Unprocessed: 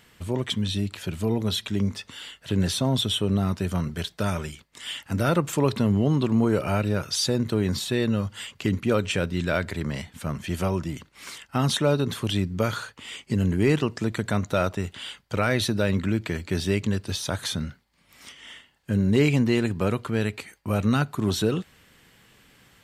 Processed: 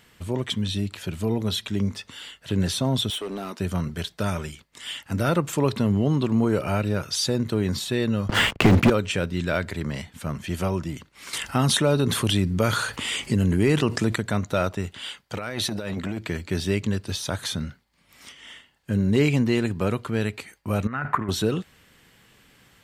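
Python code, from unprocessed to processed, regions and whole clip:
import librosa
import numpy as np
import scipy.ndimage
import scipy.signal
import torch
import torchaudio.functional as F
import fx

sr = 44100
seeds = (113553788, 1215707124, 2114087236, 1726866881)

y = fx.chain(x, sr, fx.highpass(hz=270.0, slope=24),
    fx.clip_hard(threshold_db=-27.0), at=(3.1, 3.6))
y = fx.chain(y, sr, fx.lowpass(hz=1800.0, slope=6),
    fx.leveller(passes=5),
    fx.band_squash(depth_pct=70), at=(8.29, 8.9))
y = fx.chain(y, sr, fx.peak_eq(hz=9800.0, db=6.0, octaves=0.38),
    fx.env_flatten(amount_pct=50), at=(11.33, 14.16))
y = fx.chain(y, sr, fx.low_shelf(hz=130.0, db=-9.0),
    fx.over_compress(threshold_db=-27.0, ratio=-0.5),
    fx.transformer_sat(knee_hz=490.0), at=(15.03, 16.21))
y = fx.chain(y, sr, fx.over_compress(threshold_db=-31.0, ratio=-1.0),
    fx.curve_eq(hz=(400.0, 910.0, 1900.0, 4000.0), db=(0, 7, 14, -17)), at=(20.87, 21.29))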